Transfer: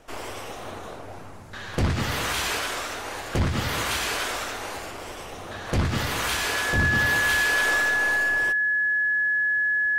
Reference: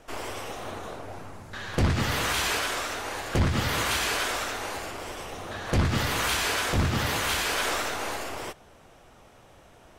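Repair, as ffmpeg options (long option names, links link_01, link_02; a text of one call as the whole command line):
ffmpeg -i in.wav -af "bandreject=frequency=1700:width=30" out.wav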